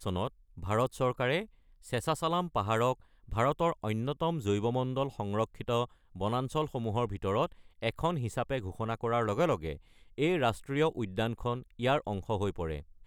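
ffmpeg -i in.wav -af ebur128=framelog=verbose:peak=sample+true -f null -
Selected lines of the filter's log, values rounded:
Integrated loudness:
  I:         -32.4 LUFS
  Threshold: -42.5 LUFS
Loudness range:
  LRA:         1.8 LU
  Threshold: -52.4 LUFS
  LRA low:   -33.4 LUFS
  LRA high:  -31.5 LUFS
Sample peak:
  Peak:      -14.3 dBFS
True peak:
  Peak:      -14.3 dBFS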